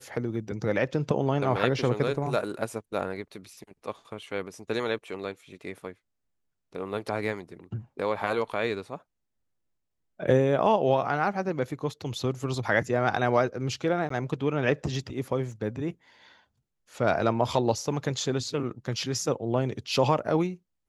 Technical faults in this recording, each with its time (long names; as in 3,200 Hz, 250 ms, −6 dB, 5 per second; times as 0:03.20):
0:14.09–0:14.10: drop-out 14 ms
0:15.52: drop-out 2.1 ms